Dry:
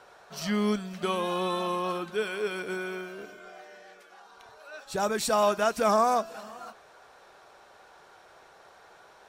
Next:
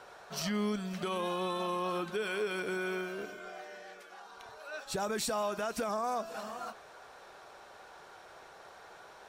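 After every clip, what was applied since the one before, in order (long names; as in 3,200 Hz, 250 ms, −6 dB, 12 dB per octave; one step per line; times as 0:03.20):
in parallel at 0 dB: downward compressor, threshold −33 dBFS, peak gain reduction 14 dB
on the sum: brickwall limiter −20.5 dBFS, peak gain reduction 10.5 dB
level −4.5 dB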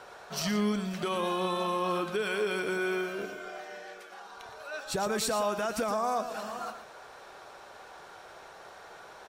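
single-tap delay 116 ms −10.5 dB
level +3.5 dB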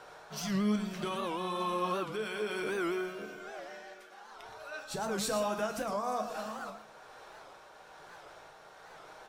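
amplitude tremolo 1.1 Hz, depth 32%
convolution reverb RT60 0.40 s, pre-delay 6 ms, DRR 5 dB
wow of a warped record 78 rpm, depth 160 cents
level −3.5 dB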